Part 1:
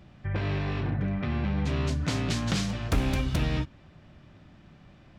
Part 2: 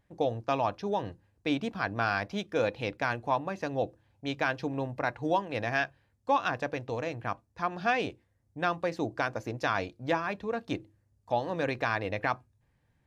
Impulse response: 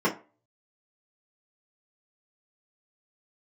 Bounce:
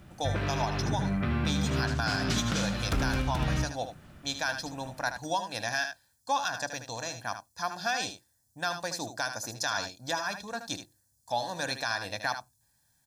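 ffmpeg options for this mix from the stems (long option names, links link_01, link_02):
-filter_complex "[0:a]volume=0dB,asplit=2[link_01][link_02];[link_02]volume=-9.5dB[link_03];[1:a]aecho=1:1:1.2:0.61,aexciter=amount=4.8:drive=9.3:freq=3900,lowshelf=frequency=180:gain=-9,volume=-3.5dB,asplit=2[link_04][link_05];[link_05]volume=-9.5dB[link_06];[link_03][link_06]amix=inputs=2:normalize=0,aecho=0:1:76:1[link_07];[link_01][link_04][link_07]amix=inputs=3:normalize=0,equalizer=frequency=1400:width_type=o:width=0.35:gain=6.5,alimiter=limit=-18dB:level=0:latency=1:release=161"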